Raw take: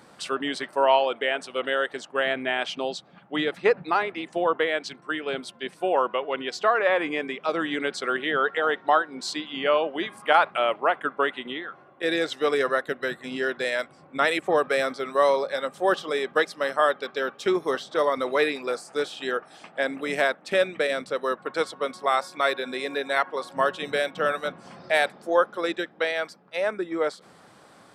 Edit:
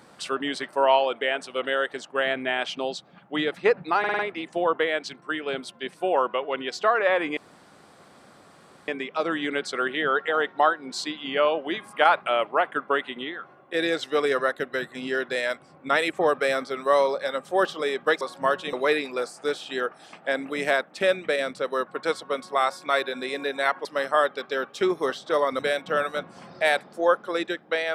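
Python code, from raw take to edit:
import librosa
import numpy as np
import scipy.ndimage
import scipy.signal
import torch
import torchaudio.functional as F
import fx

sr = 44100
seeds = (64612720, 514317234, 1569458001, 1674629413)

y = fx.edit(x, sr, fx.stutter(start_s=3.99, slice_s=0.05, count=5),
    fx.insert_room_tone(at_s=7.17, length_s=1.51),
    fx.swap(start_s=16.5, length_s=1.74, other_s=23.36, other_length_s=0.52), tone=tone)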